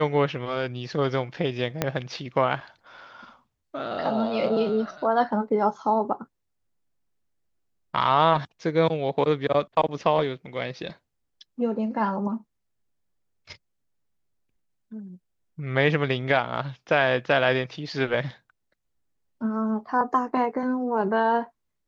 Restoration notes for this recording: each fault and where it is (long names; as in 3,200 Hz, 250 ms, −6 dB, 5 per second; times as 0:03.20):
0:01.82: click −8 dBFS